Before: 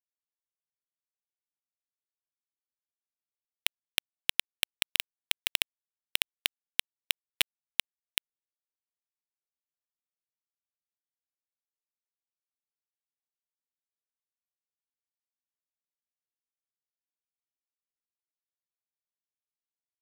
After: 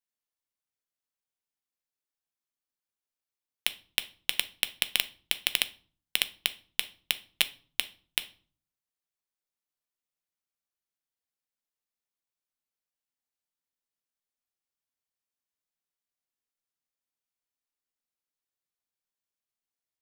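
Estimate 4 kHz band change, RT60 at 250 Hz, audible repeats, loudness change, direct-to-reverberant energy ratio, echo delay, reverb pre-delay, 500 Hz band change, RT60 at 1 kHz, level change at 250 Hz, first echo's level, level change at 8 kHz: +2.0 dB, 0.60 s, no echo audible, +2.0 dB, 11.0 dB, no echo audible, 4 ms, +2.0 dB, 0.40 s, +2.5 dB, no echo audible, +2.0 dB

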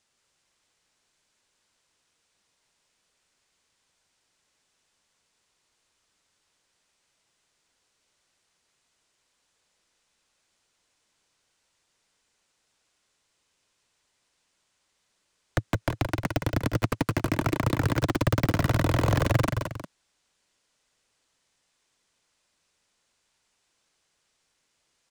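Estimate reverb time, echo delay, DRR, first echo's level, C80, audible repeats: no reverb audible, 170 ms, no reverb audible, −5.5 dB, no reverb audible, 2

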